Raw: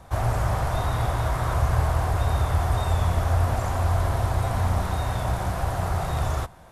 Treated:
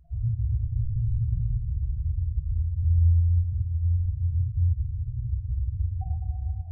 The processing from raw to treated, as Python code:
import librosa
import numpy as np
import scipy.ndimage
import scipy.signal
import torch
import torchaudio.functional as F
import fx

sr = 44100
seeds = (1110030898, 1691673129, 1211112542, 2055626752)

y = fx.tilt_eq(x, sr, slope=-2.0, at=(0.79, 2.84))
y = fx.over_compress(y, sr, threshold_db=-19.0, ratio=-0.5)
y = fx.spec_topn(y, sr, count=1)
y = y + 10.0 ** (-9.0 / 20.0) * np.pad(y, (int(106 * sr / 1000.0), 0))[:len(y)]
y = fx.room_shoebox(y, sr, seeds[0], volume_m3=210.0, walls='hard', distance_m=0.49)